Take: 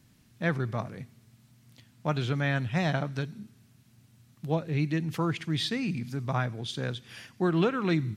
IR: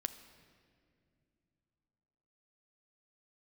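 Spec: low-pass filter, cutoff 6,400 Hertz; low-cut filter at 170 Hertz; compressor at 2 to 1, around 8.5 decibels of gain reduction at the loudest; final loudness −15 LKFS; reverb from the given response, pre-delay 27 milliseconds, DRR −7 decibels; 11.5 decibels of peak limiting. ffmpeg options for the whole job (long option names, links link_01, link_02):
-filter_complex "[0:a]highpass=170,lowpass=6400,acompressor=threshold=-38dB:ratio=2,alimiter=level_in=9dB:limit=-24dB:level=0:latency=1,volume=-9dB,asplit=2[link_01][link_02];[1:a]atrim=start_sample=2205,adelay=27[link_03];[link_02][link_03]afir=irnorm=-1:irlink=0,volume=7.5dB[link_04];[link_01][link_04]amix=inputs=2:normalize=0,volume=21dB"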